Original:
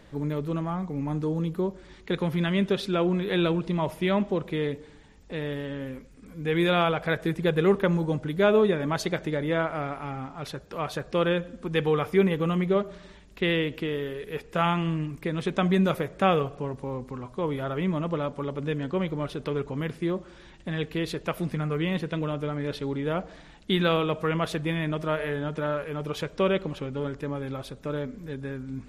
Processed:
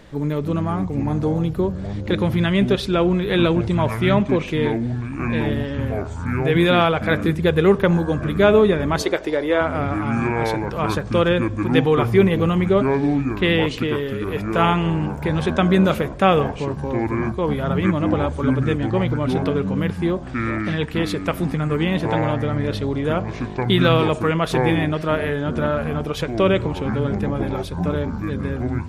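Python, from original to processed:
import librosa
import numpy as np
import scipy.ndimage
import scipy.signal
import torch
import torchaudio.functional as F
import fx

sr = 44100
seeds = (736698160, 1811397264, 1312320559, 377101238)

y = fx.echo_pitch(x, sr, ms=236, semitones=-7, count=3, db_per_echo=-6.0)
y = fx.low_shelf_res(y, sr, hz=250.0, db=-11.5, q=1.5, at=(9.02, 9.61))
y = y * librosa.db_to_amplitude(6.5)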